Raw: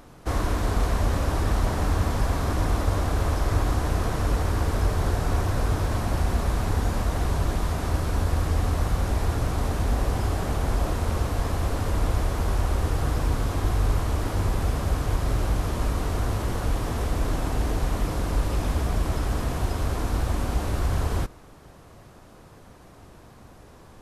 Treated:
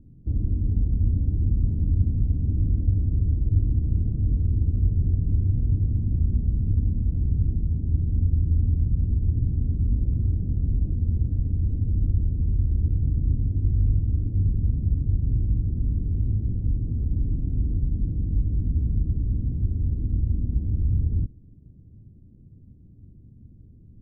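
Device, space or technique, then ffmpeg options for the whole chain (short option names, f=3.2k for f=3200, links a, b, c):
the neighbour's flat through the wall: -af "lowpass=f=260:w=0.5412,lowpass=f=260:w=1.3066,equalizer=f=98:t=o:w=0.93:g=5"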